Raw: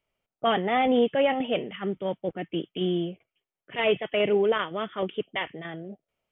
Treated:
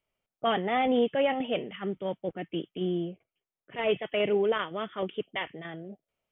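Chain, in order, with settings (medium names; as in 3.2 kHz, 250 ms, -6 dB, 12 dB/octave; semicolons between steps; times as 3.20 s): 2.74–3.88 s: treble shelf 2.3 kHz -> 2.6 kHz -9.5 dB; trim -3 dB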